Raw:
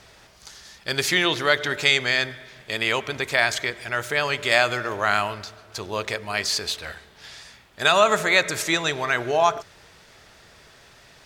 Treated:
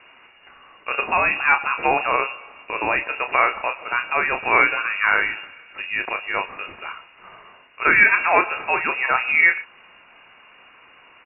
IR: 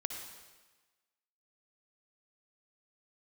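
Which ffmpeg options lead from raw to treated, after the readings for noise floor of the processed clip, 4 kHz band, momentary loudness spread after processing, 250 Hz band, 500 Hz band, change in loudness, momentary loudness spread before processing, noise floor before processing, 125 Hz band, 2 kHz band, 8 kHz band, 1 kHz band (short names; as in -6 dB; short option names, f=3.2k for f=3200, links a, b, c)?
-51 dBFS, under -10 dB, 17 LU, -3.0 dB, -3.5 dB, +3.0 dB, 17 LU, -52 dBFS, -10.0 dB, +4.5 dB, under -40 dB, +4.0 dB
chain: -filter_complex "[0:a]asplit=2[a][b];[b]adelay=31,volume=-8dB[c];[a][c]amix=inputs=2:normalize=0,lowpass=f=2.5k:t=q:w=0.5098,lowpass=f=2.5k:t=q:w=0.6013,lowpass=f=2.5k:t=q:w=0.9,lowpass=f=2.5k:t=q:w=2.563,afreqshift=-2900,volume=2.5dB"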